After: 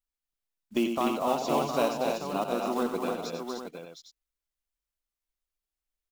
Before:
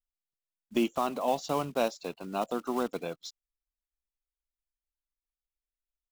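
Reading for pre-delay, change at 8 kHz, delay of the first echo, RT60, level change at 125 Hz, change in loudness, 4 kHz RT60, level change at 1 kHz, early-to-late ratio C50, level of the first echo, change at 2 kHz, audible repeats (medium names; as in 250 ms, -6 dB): no reverb, +3.0 dB, 93 ms, no reverb, +2.0 dB, +2.5 dB, no reverb, +3.0 dB, no reverb, -9.0 dB, +3.0 dB, 5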